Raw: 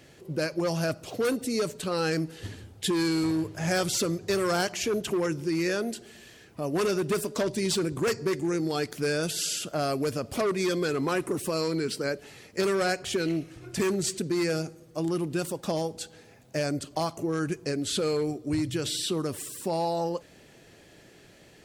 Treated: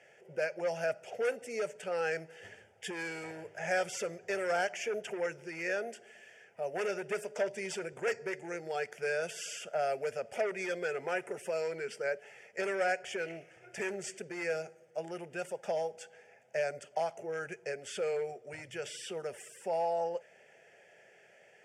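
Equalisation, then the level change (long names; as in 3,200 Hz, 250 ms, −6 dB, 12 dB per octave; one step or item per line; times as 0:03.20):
band-pass filter 360–5,300 Hz
phaser with its sweep stopped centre 1,100 Hz, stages 6
−1.0 dB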